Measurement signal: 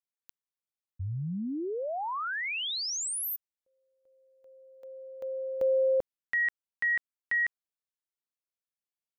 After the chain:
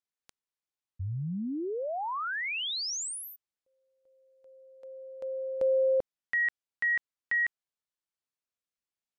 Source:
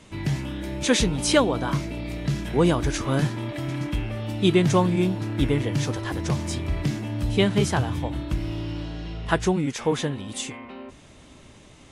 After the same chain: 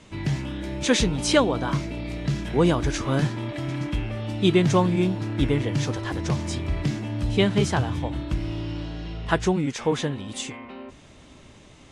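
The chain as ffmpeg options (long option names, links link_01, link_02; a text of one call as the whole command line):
ffmpeg -i in.wav -af "lowpass=8400" out.wav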